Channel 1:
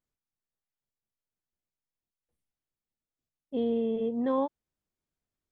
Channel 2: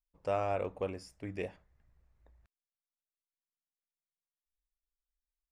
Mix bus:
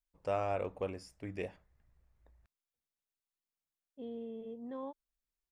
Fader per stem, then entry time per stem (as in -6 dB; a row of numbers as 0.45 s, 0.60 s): -15.0 dB, -1.5 dB; 0.45 s, 0.00 s